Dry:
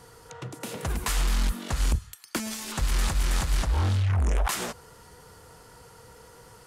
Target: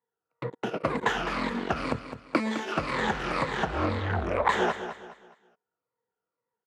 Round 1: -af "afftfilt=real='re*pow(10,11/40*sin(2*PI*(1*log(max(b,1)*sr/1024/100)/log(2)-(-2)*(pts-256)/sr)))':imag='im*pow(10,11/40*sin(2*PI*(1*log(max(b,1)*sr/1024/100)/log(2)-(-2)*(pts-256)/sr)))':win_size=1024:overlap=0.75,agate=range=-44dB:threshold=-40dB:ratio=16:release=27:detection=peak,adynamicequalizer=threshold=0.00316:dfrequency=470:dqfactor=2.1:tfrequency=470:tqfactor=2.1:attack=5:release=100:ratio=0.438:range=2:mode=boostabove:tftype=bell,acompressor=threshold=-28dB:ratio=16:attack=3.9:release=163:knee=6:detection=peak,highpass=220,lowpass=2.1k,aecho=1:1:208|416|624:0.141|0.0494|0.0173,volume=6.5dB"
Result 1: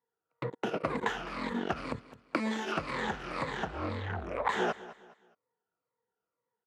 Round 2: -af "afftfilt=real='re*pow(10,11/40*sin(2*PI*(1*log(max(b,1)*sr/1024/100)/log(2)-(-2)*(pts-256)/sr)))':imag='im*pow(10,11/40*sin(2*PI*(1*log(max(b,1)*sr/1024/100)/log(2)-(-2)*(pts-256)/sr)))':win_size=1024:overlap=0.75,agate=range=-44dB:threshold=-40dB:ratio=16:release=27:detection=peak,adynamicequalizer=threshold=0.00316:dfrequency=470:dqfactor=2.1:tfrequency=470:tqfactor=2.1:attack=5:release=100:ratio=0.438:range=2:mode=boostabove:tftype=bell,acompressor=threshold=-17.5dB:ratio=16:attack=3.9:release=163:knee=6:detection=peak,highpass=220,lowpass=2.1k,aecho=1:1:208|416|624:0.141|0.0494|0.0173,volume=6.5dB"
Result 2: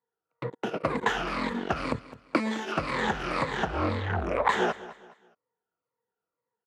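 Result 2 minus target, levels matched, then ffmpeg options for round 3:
echo-to-direct -6.5 dB
-af "afftfilt=real='re*pow(10,11/40*sin(2*PI*(1*log(max(b,1)*sr/1024/100)/log(2)-(-2)*(pts-256)/sr)))':imag='im*pow(10,11/40*sin(2*PI*(1*log(max(b,1)*sr/1024/100)/log(2)-(-2)*(pts-256)/sr)))':win_size=1024:overlap=0.75,agate=range=-44dB:threshold=-40dB:ratio=16:release=27:detection=peak,adynamicequalizer=threshold=0.00316:dfrequency=470:dqfactor=2.1:tfrequency=470:tqfactor=2.1:attack=5:release=100:ratio=0.438:range=2:mode=boostabove:tftype=bell,acompressor=threshold=-17.5dB:ratio=16:attack=3.9:release=163:knee=6:detection=peak,highpass=220,lowpass=2.1k,aecho=1:1:208|416|624|832:0.299|0.104|0.0366|0.0128,volume=6.5dB"

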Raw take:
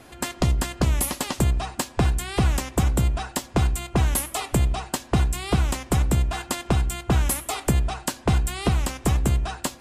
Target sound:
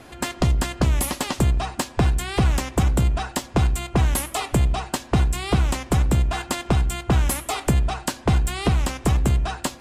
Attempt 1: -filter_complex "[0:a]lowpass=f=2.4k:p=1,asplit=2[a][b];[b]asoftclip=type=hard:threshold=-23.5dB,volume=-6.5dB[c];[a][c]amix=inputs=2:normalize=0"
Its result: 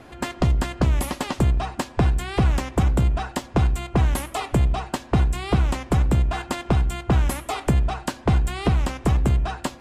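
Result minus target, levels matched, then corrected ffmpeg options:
8000 Hz band -6.5 dB
-filter_complex "[0:a]lowpass=f=7.3k:p=1,asplit=2[a][b];[b]asoftclip=type=hard:threshold=-23.5dB,volume=-6.5dB[c];[a][c]amix=inputs=2:normalize=0"

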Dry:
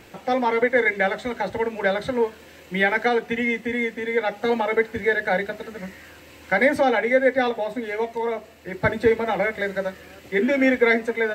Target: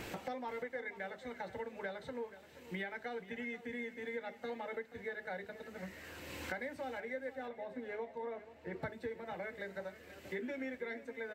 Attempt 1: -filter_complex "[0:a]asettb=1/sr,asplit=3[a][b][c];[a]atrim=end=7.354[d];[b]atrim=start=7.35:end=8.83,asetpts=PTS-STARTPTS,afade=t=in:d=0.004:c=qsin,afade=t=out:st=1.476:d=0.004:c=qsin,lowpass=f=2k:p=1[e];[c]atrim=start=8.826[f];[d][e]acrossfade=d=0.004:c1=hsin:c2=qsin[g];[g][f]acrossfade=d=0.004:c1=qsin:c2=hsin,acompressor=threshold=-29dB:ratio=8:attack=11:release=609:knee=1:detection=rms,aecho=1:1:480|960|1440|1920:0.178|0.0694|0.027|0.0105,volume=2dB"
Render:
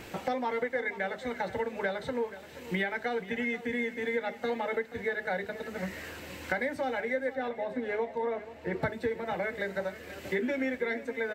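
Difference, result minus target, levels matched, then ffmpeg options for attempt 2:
compressor: peak gain reduction -10.5 dB
-filter_complex "[0:a]asettb=1/sr,asplit=3[a][b][c];[a]atrim=end=7.354[d];[b]atrim=start=7.35:end=8.83,asetpts=PTS-STARTPTS,afade=t=in:d=0.004:c=qsin,afade=t=out:st=1.476:d=0.004:c=qsin,lowpass=f=2k:p=1[e];[c]atrim=start=8.826[f];[d][e]acrossfade=d=0.004:c1=hsin:c2=qsin[g];[g][f]acrossfade=d=0.004:c1=qsin:c2=hsin,acompressor=threshold=-41dB:ratio=8:attack=11:release=609:knee=1:detection=rms,aecho=1:1:480|960|1440|1920:0.178|0.0694|0.027|0.0105,volume=2dB"

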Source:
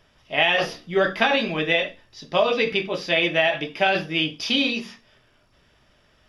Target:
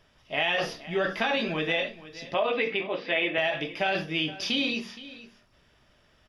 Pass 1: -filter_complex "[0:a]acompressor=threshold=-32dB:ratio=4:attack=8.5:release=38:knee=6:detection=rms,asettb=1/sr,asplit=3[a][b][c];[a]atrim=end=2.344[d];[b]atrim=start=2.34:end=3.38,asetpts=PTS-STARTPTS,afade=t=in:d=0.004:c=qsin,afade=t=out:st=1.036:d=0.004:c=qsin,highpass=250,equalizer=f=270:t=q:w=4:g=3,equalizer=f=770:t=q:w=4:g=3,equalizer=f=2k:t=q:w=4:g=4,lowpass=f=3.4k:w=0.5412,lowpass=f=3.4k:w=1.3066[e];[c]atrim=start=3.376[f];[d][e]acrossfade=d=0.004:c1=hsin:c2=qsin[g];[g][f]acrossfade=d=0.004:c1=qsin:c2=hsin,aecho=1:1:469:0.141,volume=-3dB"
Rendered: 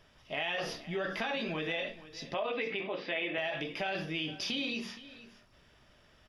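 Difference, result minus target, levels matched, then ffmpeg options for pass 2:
compressor: peak gain reduction +8.5 dB
-filter_complex "[0:a]acompressor=threshold=-20.5dB:ratio=4:attack=8.5:release=38:knee=6:detection=rms,asettb=1/sr,asplit=3[a][b][c];[a]atrim=end=2.344[d];[b]atrim=start=2.34:end=3.38,asetpts=PTS-STARTPTS,afade=t=in:d=0.004:c=qsin,afade=t=out:st=1.036:d=0.004:c=qsin,highpass=250,equalizer=f=270:t=q:w=4:g=3,equalizer=f=770:t=q:w=4:g=3,equalizer=f=2k:t=q:w=4:g=4,lowpass=f=3.4k:w=0.5412,lowpass=f=3.4k:w=1.3066[e];[c]atrim=start=3.376[f];[d][e]acrossfade=d=0.004:c1=hsin:c2=qsin[g];[g][f]acrossfade=d=0.004:c1=qsin:c2=hsin,aecho=1:1:469:0.141,volume=-3dB"

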